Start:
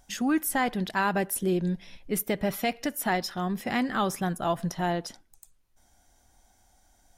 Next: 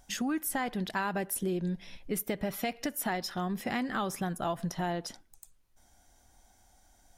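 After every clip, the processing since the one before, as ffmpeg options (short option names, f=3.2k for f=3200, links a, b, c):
-af "acompressor=threshold=-30dB:ratio=3"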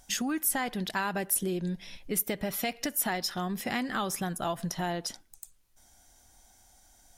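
-af "equalizer=f=13k:t=o:w=2.9:g=7"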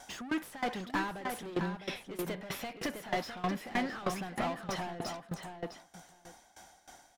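-filter_complex "[0:a]asplit=2[a][b];[b]highpass=f=720:p=1,volume=33dB,asoftclip=type=tanh:threshold=-13dB[c];[a][c]amix=inputs=2:normalize=0,lowpass=f=1.5k:p=1,volume=-6dB,asplit=2[d][e];[e]adelay=657,lowpass=f=4.8k:p=1,volume=-5dB,asplit=2[f][g];[g]adelay=657,lowpass=f=4.8k:p=1,volume=0.15,asplit=2[h][i];[i]adelay=657,lowpass=f=4.8k:p=1,volume=0.15[j];[d][f][h][j]amix=inputs=4:normalize=0,aeval=exprs='val(0)*pow(10,-19*if(lt(mod(3.2*n/s,1),2*abs(3.2)/1000),1-mod(3.2*n/s,1)/(2*abs(3.2)/1000),(mod(3.2*n/s,1)-2*abs(3.2)/1000)/(1-2*abs(3.2)/1000))/20)':c=same,volume=-7.5dB"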